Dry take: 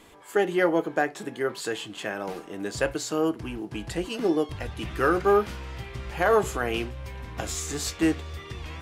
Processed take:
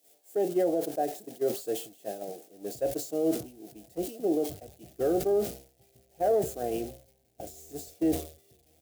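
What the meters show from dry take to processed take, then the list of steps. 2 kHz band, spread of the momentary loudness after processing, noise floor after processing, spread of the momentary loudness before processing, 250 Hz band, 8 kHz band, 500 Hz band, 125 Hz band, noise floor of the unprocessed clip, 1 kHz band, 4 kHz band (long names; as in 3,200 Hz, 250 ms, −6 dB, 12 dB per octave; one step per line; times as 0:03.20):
−21.5 dB, 18 LU, −67 dBFS, 14 LU, −3.5 dB, −6.5 dB, −3.0 dB, −9.5 dB, −45 dBFS, −7.5 dB, −11.5 dB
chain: spike at every zero crossing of −17.5 dBFS
drawn EQ curve 100 Hz 0 dB, 720 Hz +9 dB, 1,000 Hz −23 dB, 1,500 Hz −18 dB
brickwall limiter −14 dBFS, peak gain reduction 9 dB
high-pass filter 78 Hz
high-shelf EQ 2,100 Hz +10.5 dB
far-end echo of a speakerphone 140 ms, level −21 dB
reversed playback
upward compression, threshold −29 dBFS
reversed playback
downward expander −17 dBFS
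level that may fall only so fast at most 130 dB per second
level −3 dB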